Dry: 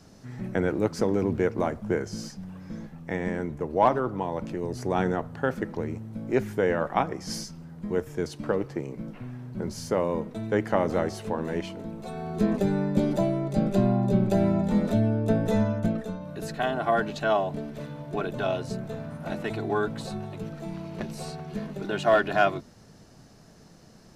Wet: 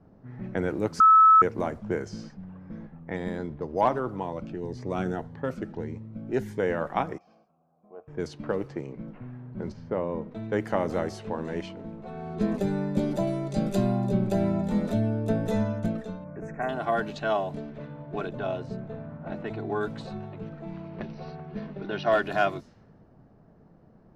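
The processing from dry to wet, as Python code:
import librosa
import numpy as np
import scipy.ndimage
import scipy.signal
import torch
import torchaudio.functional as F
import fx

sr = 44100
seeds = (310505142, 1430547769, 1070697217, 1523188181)

y = fx.resample_linear(x, sr, factor=8, at=(3.16, 3.81))
y = fx.notch_cascade(y, sr, direction='rising', hz=1.7, at=(4.32, 6.6))
y = fx.vowel_filter(y, sr, vowel='a', at=(7.18, 8.08))
y = fx.spacing_loss(y, sr, db_at_10k=23, at=(9.72, 10.32))
y = fx.cvsd(y, sr, bps=64000, at=(11.76, 12.35))
y = fx.high_shelf(y, sr, hz=3600.0, db=9.5, at=(13.27, 14.08))
y = fx.ellip_bandstop(y, sr, low_hz=2300.0, high_hz=6000.0, order=3, stop_db=40, at=(16.24, 16.69))
y = fx.high_shelf(y, sr, hz=2300.0, db=-8.5, at=(18.29, 19.81))
y = fx.brickwall_lowpass(y, sr, high_hz=6100.0, at=(20.88, 22.11), fade=0.02)
y = fx.edit(y, sr, fx.bleep(start_s=1.0, length_s=0.42, hz=1300.0, db=-9.5), tone=tone)
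y = fx.env_lowpass(y, sr, base_hz=940.0, full_db=-23.0)
y = y * librosa.db_to_amplitude(-2.5)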